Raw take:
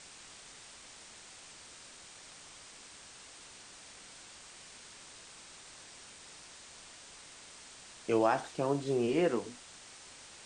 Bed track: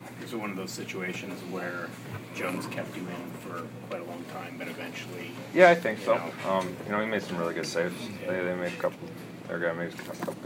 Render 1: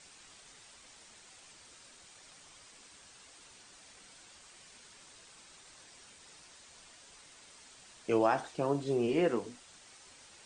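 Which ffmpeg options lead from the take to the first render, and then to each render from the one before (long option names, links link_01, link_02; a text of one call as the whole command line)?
ffmpeg -i in.wav -af "afftdn=noise_reduction=6:noise_floor=-53" out.wav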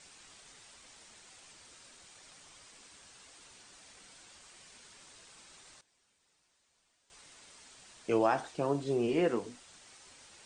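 ffmpeg -i in.wav -filter_complex "[0:a]asplit=3[link_01][link_02][link_03];[link_01]atrim=end=5.81,asetpts=PTS-STARTPTS,afade=type=out:start_time=5.64:duration=0.17:curve=log:silence=0.125893[link_04];[link_02]atrim=start=5.81:end=7.1,asetpts=PTS-STARTPTS,volume=-18dB[link_05];[link_03]atrim=start=7.1,asetpts=PTS-STARTPTS,afade=type=in:duration=0.17:curve=log:silence=0.125893[link_06];[link_04][link_05][link_06]concat=n=3:v=0:a=1" out.wav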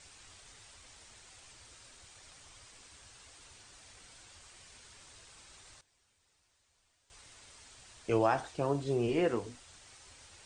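ffmpeg -i in.wav -af "lowshelf=frequency=130:width_type=q:width=1.5:gain=8.5" out.wav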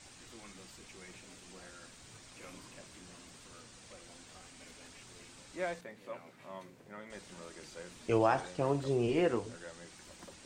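ffmpeg -i in.wav -i bed.wav -filter_complex "[1:a]volume=-20dB[link_01];[0:a][link_01]amix=inputs=2:normalize=0" out.wav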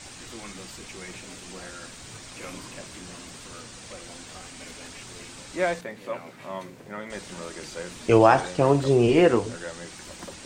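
ffmpeg -i in.wav -af "volume=12dB" out.wav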